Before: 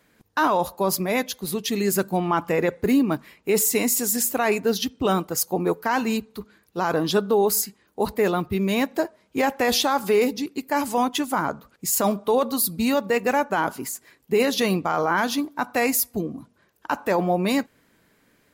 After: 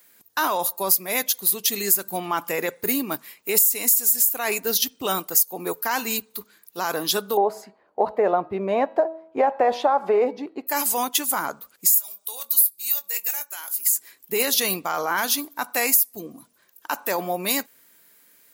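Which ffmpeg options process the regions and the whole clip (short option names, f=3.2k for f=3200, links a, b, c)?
-filter_complex "[0:a]asettb=1/sr,asplit=3[a][b][c];[a]atrim=end=7.374[d];[b]atrim=start=7.37:end=10.67,asetpts=PTS-STARTPTS,afade=t=in:d=0.004:c=qsin,afade=t=out:st=3.296:d=0.004:c=qsin,lowpass=1.4k,equalizer=f=660:t=o:w=1.3:g=14.5,bandreject=f=323:t=h:w=4,bandreject=f=646:t=h:w=4,bandreject=f=969:t=h:w=4,bandreject=f=1.292k:t=h:w=4,bandreject=f=1.615k:t=h:w=4,bandreject=f=1.938k:t=h:w=4,bandreject=f=2.261k:t=h:w=4,bandreject=f=2.584k:t=h:w=4,bandreject=f=2.907k:t=h:w=4,bandreject=f=3.23k:t=h:w=4,bandreject=f=3.553k:t=h:w=4,bandreject=f=3.876k:t=h:w=4,bandreject=f=4.199k:t=h:w=4,bandreject=f=4.522k:t=h:w=4[e];[c]atrim=start=10.666[f];[d][e]acrossfade=d=0.004:c1=hsin:c2=qsin[g];[g][f]acrossfade=d=0.004:c1=qsin:c2=hsin,asettb=1/sr,asplit=3[h][i][j];[h]atrim=end=11.944[k];[i]atrim=start=11.94:end=13.86,asetpts=PTS-STARTPTS,afade=t=in:d=0.004:c=qsin,afade=t=out:st=1.916:d=0.004:c=qsin,aderivative,bandreject=f=1.2k:w=22,asplit=2[l][m];[m]adelay=21,volume=-14dB[n];[l][n]amix=inputs=2:normalize=0,atrim=end_sample=84672[o];[j]atrim=start=13.856[p];[k][o]acrossfade=d=0.004:c1=hsin:c2=qsin[q];[q][p]acrossfade=d=0.004:c1=qsin:c2=hsin,aemphasis=mode=production:type=riaa,acompressor=threshold=-13dB:ratio=10,volume=-2dB"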